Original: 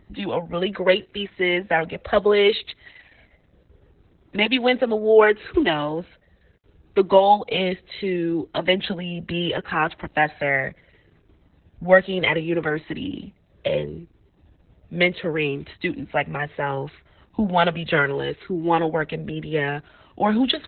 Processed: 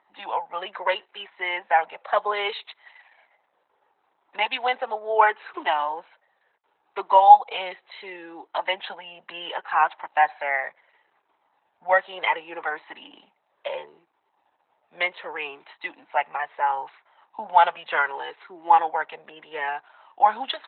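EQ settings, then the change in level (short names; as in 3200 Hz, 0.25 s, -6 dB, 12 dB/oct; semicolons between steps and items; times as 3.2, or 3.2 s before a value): resonant high-pass 880 Hz, resonance Q 4; air absorption 170 m; -4.0 dB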